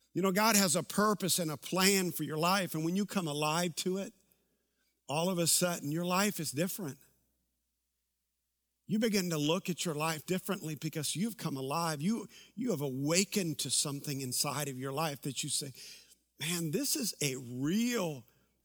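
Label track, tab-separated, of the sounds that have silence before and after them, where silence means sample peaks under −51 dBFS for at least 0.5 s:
5.090000	7.010000	sound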